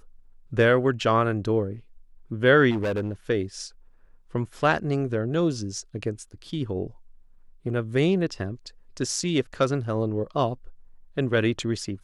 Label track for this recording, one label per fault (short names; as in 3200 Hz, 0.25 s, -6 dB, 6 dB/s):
2.700000	3.120000	clipped -22.5 dBFS